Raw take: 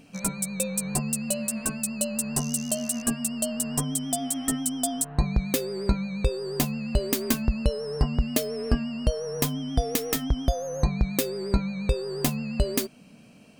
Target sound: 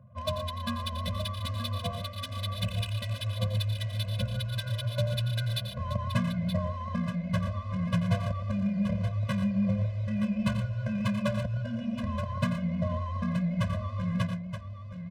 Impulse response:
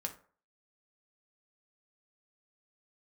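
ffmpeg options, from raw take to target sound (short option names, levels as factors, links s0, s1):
-filter_complex "[0:a]highshelf=f=6400:g=-12,acrossover=split=350[s0][s1];[s1]acontrast=32[s2];[s0][s2]amix=inputs=2:normalize=0,asoftclip=type=tanh:threshold=0.168,highpass=f=200:w=0.5412,highpass=f=200:w=1.3066,equalizer=f=900:t=q:w=4:g=-5,equalizer=f=1300:t=q:w=4:g=7,equalizer=f=2300:t=q:w=4:g=3,equalizer=f=4400:t=q:w=4:g=-4,lowpass=f=9800:w=0.5412,lowpass=f=9800:w=1.3066,asetrate=22050,aresample=44100,atempo=2,adynamicsmooth=sensitivity=8:basefreq=500,aecho=1:1:79|105|832:0.266|0.299|0.376,asetrate=39690,aresample=44100,afftfilt=real='re*eq(mod(floor(b*sr/1024/240),2),0)':imag='im*eq(mod(floor(b*sr/1024/240),2),0)':win_size=1024:overlap=0.75"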